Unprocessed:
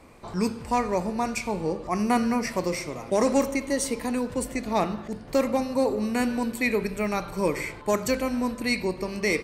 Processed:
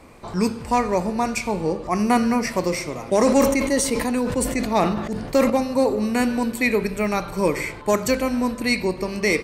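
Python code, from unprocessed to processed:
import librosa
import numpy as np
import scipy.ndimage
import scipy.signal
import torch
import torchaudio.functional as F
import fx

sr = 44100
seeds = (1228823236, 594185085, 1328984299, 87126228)

y = fx.sustainer(x, sr, db_per_s=49.0, at=(3.1, 5.5))
y = y * 10.0 ** (4.5 / 20.0)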